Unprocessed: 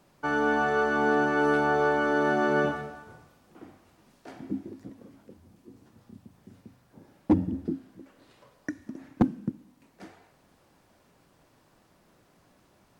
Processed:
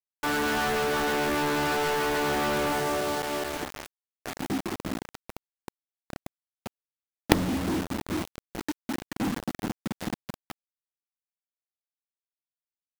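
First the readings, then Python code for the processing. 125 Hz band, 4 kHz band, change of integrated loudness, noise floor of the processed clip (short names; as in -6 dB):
+1.5 dB, n/a, -2.0 dB, under -85 dBFS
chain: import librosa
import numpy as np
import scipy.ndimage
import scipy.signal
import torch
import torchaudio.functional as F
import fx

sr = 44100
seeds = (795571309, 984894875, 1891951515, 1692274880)

y = fx.reverse_delay_fb(x, sr, ms=215, feedback_pct=68, wet_db=-10.0)
y = fx.quant_companded(y, sr, bits=2)
y = F.gain(torch.from_numpy(y), -1.0).numpy()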